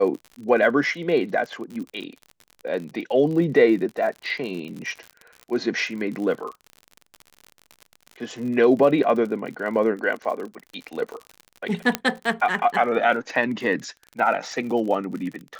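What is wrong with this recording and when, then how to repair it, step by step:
crackle 54/s -31 dBFS
11.95 pop -6 dBFS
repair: de-click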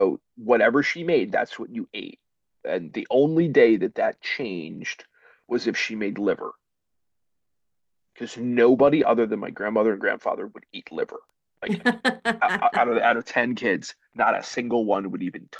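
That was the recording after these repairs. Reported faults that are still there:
none

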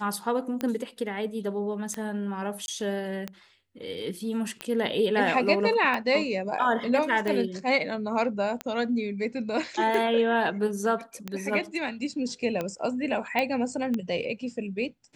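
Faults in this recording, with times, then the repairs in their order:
tick 45 rpm -16 dBFS
2.66–2.68 gap 21 ms
13.39 pop -14 dBFS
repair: de-click; interpolate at 2.66, 21 ms

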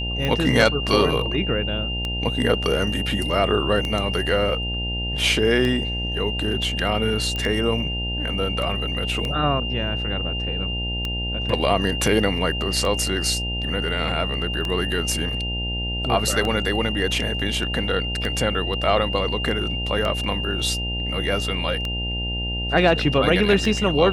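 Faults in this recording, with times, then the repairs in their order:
buzz 60 Hz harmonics 15 -28 dBFS
tick 33 1/3 rpm -12 dBFS
tone 2800 Hz -27 dBFS
7.36 pop -14 dBFS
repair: de-click; de-hum 60 Hz, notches 15; notch 2800 Hz, Q 30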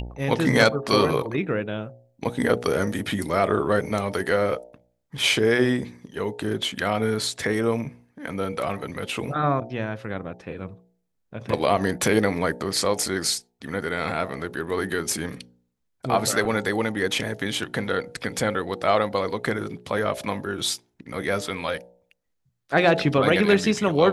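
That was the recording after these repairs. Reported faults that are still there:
none

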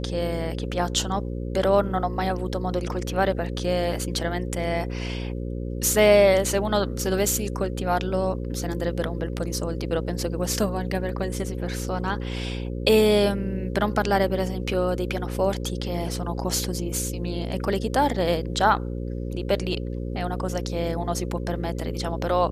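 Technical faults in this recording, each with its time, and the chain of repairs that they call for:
buzz 60 Hz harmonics 9 -30 dBFS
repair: de-hum 60 Hz, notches 9

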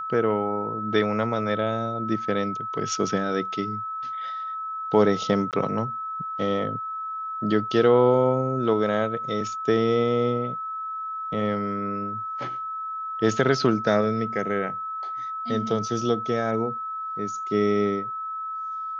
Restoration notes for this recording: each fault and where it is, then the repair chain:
tone 1300 Hz -29 dBFS
5.51–5.53 gap 18 ms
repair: notch 1300 Hz, Q 30; interpolate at 5.51, 18 ms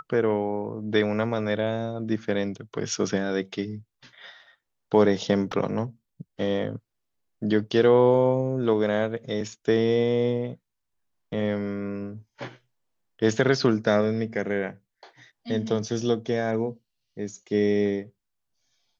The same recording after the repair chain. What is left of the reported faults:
none

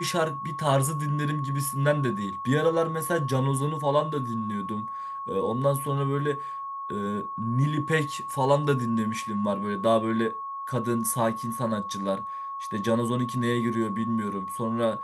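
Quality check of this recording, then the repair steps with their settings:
tone 1100 Hz -32 dBFS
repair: notch 1100 Hz, Q 30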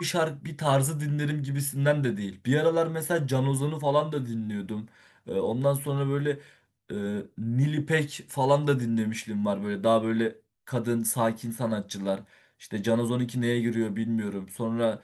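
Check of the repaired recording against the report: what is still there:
none

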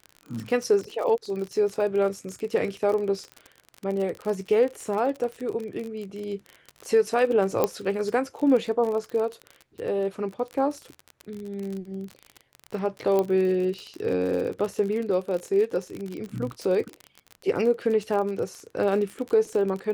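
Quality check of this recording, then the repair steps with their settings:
crackle 43/s -30 dBFS
7.64 pop -9 dBFS
13.19 pop -13 dBFS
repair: de-click

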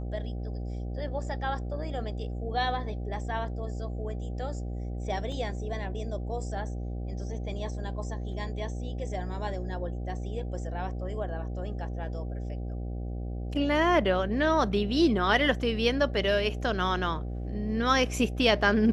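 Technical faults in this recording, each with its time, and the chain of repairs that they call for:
buzz 60 Hz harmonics 13 -34 dBFS
5.32 gap 2.3 ms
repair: de-hum 60 Hz, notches 13; interpolate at 5.32, 2.3 ms

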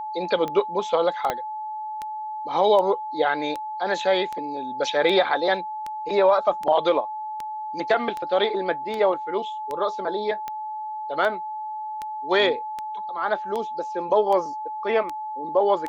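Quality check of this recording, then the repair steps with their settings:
tick 78 rpm -17 dBFS
tone 860 Hz -29 dBFS
1.3 pop -10 dBFS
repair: de-click; notch 860 Hz, Q 30

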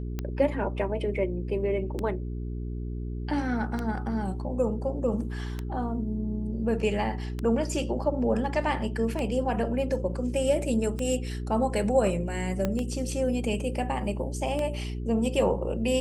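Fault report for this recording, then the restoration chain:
hum 60 Hz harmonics 7 -33 dBFS
tick 33 1/3 rpm -18 dBFS
12.65 pop -14 dBFS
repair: de-click; de-hum 60 Hz, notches 7

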